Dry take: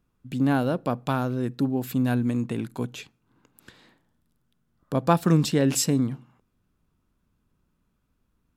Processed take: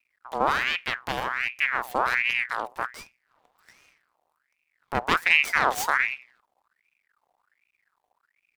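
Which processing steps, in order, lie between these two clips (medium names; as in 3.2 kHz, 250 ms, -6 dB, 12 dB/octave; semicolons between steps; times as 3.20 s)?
comb filter that takes the minimum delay 0.32 ms; half-wave rectifier; ring modulator with a swept carrier 1.6 kHz, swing 55%, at 1.3 Hz; trim +4.5 dB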